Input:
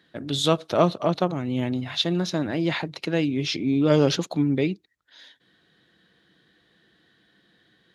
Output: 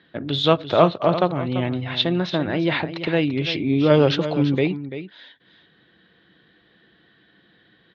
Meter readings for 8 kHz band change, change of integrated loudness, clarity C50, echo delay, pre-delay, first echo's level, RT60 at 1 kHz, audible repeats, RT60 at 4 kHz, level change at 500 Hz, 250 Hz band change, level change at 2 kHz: below −10 dB, +3.0 dB, no reverb audible, 340 ms, no reverb audible, −11.5 dB, no reverb audible, 1, no reverb audible, +4.5 dB, +2.0 dB, +5.0 dB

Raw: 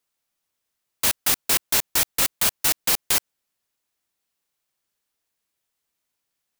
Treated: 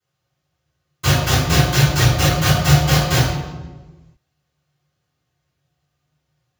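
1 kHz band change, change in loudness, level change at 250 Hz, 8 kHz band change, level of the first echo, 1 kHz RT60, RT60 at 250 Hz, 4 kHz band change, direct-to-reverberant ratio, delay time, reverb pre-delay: +11.0 dB, +4.5 dB, +19.0 dB, −1.5 dB, no echo audible, 1.1 s, 1.7 s, +5.0 dB, −25.0 dB, no echo audible, 3 ms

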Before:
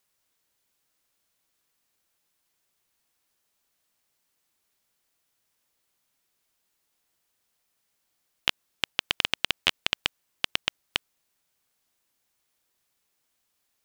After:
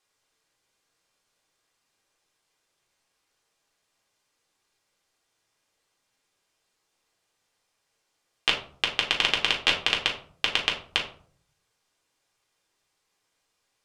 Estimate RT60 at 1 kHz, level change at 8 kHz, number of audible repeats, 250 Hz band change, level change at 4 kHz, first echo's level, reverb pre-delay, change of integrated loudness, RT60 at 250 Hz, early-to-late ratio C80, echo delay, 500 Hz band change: 0.50 s, +1.5 dB, no echo audible, +3.0 dB, +3.0 dB, no echo audible, 3 ms, +3.5 dB, 0.75 s, 12.5 dB, no echo audible, +5.5 dB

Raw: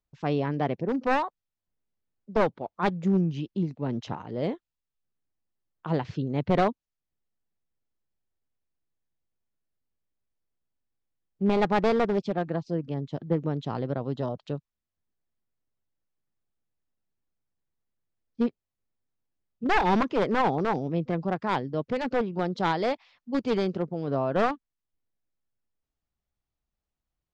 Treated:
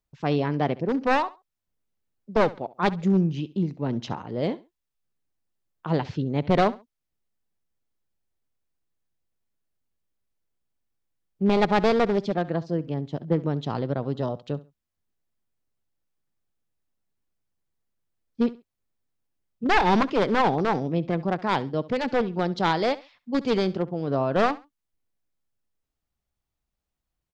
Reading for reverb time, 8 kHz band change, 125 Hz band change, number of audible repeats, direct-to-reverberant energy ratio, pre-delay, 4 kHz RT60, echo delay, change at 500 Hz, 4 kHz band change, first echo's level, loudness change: no reverb audible, can't be measured, +2.5 dB, 2, no reverb audible, no reverb audible, no reverb audible, 68 ms, +2.5 dB, +5.5 dB, −19.0 dB, +2.5 dB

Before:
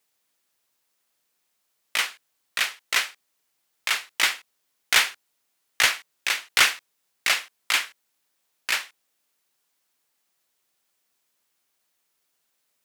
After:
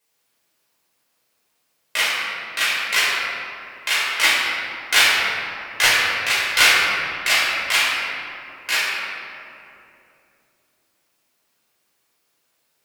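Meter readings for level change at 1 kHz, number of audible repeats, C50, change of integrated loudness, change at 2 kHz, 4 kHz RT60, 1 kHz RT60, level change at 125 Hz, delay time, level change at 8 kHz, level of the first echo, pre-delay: +7.5 dB, no echo audible, −2.0 dB, +5.5 dB, +7.5 dB, 1.4 s, 2.5 s, can't be measured, no echo audible, +4.0 dB, no echo audible, 7 ms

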